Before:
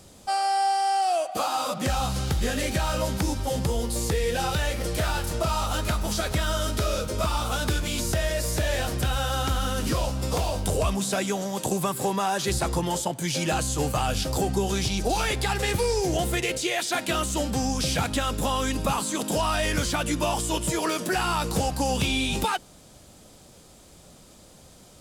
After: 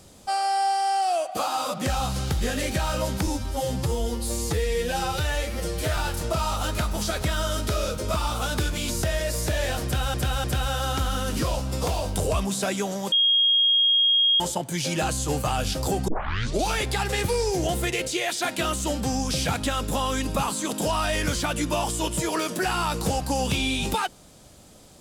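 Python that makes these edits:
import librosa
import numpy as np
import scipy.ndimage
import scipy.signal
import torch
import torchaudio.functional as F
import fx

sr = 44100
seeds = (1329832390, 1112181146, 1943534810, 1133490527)

y = fx.edit(x, sr, fx.stretch_span(start_s=3.27, length_s=1.8, factor=1.5),
    fx.repeat(start_s=8.94, length_s=0.3, count=3),
    fx.bleep(start_s=11.62, length_s=1.28, hz=3260.0, db=-16.5),
    fx.tape_start(start_s=14.58, length_s=0.58), tone=tone)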